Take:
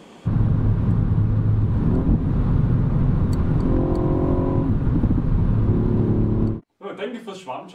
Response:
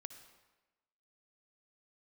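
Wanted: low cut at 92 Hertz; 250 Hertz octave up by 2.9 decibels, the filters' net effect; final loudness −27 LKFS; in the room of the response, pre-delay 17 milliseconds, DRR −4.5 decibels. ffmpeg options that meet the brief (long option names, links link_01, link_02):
-filter_complex "[0:a]highpass=92,equalizer=frequency=250:width_type=o:gain=4,asplit=2[link_01][link_02];[1:a]atrim=start_sample=2205,adelay=17[link_03];[link_02][link_03]afir=irnorm=-1:irlink=0,volume=9.5dB[link_04];[link_01][link_04]amix=inputs=2:normalize=0,volume=-12.5dB"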